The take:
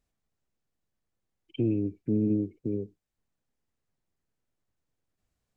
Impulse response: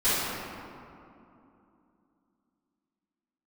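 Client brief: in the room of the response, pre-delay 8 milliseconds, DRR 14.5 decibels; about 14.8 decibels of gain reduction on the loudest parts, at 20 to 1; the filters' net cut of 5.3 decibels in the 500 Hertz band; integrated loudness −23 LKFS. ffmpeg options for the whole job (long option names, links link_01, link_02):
-filter_complex "[0:a]equalizer=frequency=500:width_type=o:gain=-8.5,acompressor=threshold=-38dB:ratio=20,asplit=2[link_01][link_02];[1:a]atrim=start_sample=2205,adelay=8[link_03];[link_02][link_03]afir=irnorm=-1:irlink=0,volume=-30dB[link_04];[link_01][link_04]amix=inputs=2:normalize=0,volume=22dB"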